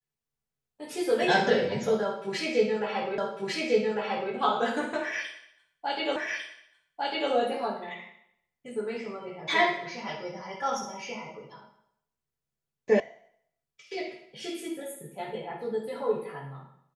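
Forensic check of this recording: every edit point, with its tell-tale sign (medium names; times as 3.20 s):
3.18 s: repeat of the last 1.15 s
6.16 s: repeat of the last 1.15 s
13.00 s: sound stops dead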